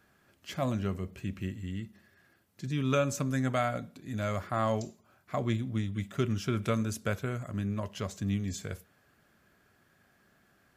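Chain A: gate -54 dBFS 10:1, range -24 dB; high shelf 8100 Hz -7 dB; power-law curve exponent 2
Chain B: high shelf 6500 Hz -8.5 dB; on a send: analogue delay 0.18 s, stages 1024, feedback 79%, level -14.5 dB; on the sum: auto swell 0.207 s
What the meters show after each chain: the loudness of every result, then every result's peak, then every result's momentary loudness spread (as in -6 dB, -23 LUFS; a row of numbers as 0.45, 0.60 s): -40.5, -35.5 LUFS; -16.0, -16.0 dBFS; 18, 20 LU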